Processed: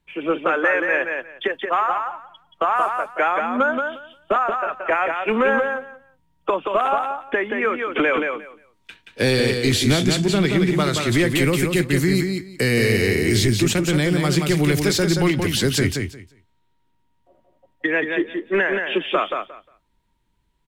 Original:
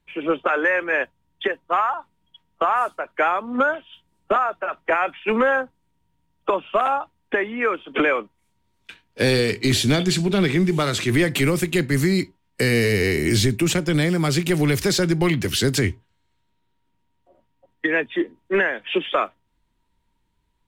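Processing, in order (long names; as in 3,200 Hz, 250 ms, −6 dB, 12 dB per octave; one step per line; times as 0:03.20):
repeating echo 177 ms, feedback 17%, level −5 dB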